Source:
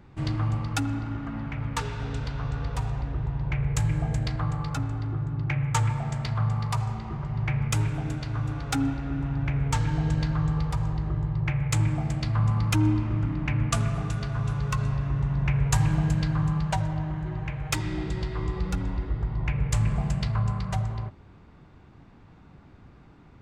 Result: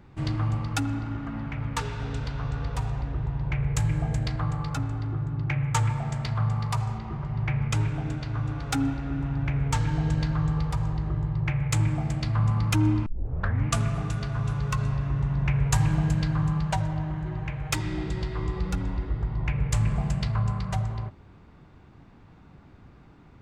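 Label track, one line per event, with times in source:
6.980000	8.600000	distance through air 50 m
13.060000	13.060000	tape start 0.60 s

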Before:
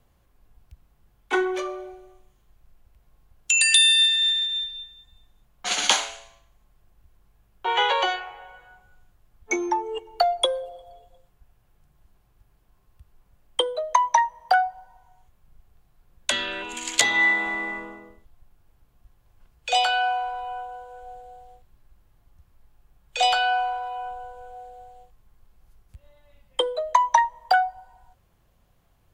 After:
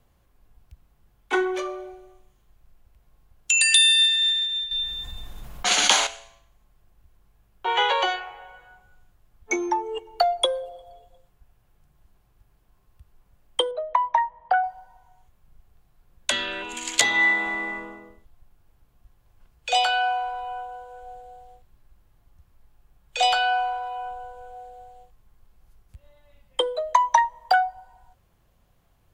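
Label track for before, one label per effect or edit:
4.710000	6.070000	level flattener amount 50%
13.710000	14.640000	distance through air 470 m

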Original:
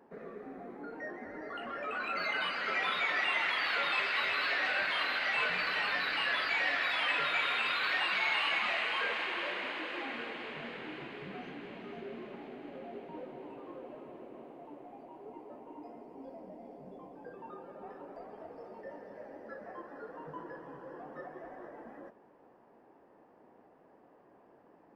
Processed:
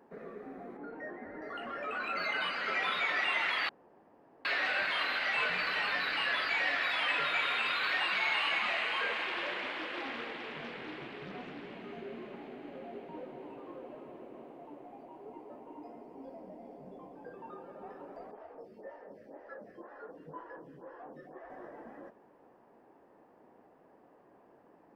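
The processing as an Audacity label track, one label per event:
0.770000	1.420000	distance through air 230 m
3.690000	4.450000	room tone
9.230000	11.750000	loudspeaker Doppler distortion depth 0.32 ms
18.310000	21.500000	lamp-driven phase shifter 2 Hz

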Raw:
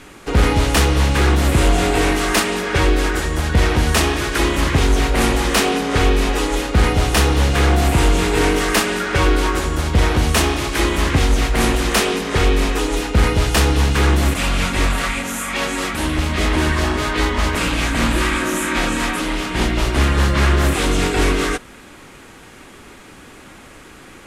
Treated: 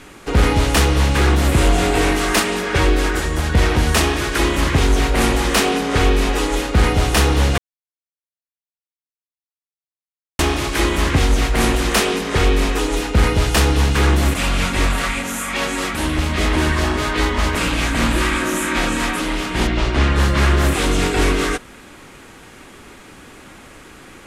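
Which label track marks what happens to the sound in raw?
7.580000	10.390000	mute
19.670000	20.160000	low-pass 5.4 kHz

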